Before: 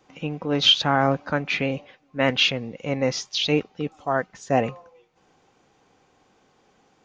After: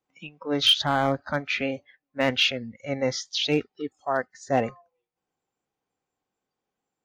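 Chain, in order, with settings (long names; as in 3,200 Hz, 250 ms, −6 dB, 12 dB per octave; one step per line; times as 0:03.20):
gain into a clipping stage and back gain 10 dB
noise reduction from a noise print of the clip's start 22 dB
level −2 dB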